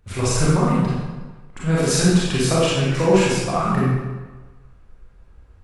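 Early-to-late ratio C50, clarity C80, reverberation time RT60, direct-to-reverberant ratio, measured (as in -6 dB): -3.0 dB, 1.0 dB, 1.3 s, -7.5 dB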